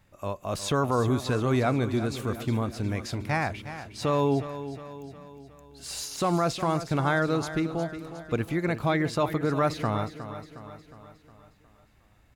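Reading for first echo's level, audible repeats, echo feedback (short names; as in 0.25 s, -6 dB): -12.0 dB, 5, 53%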